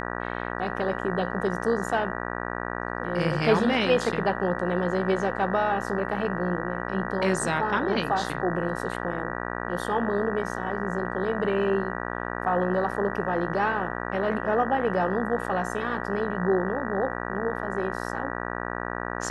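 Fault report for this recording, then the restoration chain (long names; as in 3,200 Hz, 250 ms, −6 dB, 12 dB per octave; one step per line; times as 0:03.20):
mains buzz 60 Hz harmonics 32 −32 dBFS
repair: hum removal 60 Hz, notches 32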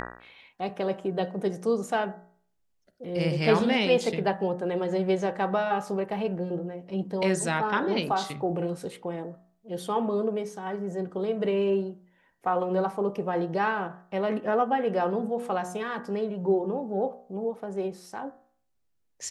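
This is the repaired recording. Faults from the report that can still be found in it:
none of them is left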